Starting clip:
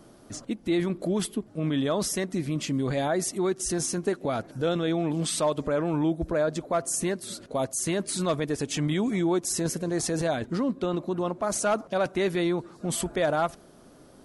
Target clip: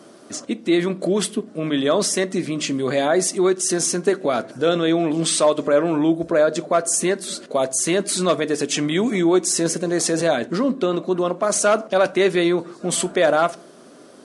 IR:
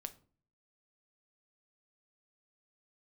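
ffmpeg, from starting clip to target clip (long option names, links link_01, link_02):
-filter_complex "[0:a]highpass=260,equalizer=frequency=860:width=5.5:gain=-6.5,asplit=2[link_01][link_02];[1:a]atrim=start_sample=2205,asetrate=52920,aresample=44100[link_03];[link_02][link_03]afir=irnorm=-1:irlink=0,volume=7dB[link_04];[link_01][link_04]amix=inputs=2:normalize=0,aresample=22050,aresample=44100,volume=2.5dB"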